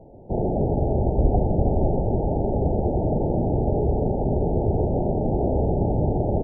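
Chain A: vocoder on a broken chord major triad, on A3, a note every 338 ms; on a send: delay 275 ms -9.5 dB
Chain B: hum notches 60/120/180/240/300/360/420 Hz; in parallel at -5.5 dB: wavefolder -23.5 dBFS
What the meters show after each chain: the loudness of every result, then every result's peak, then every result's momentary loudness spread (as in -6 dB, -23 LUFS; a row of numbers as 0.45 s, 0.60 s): -25.0 LUFS, -23.0 LUFS; -11.5 dBFS, -7.5 dBFS; 2 LU, 1 LU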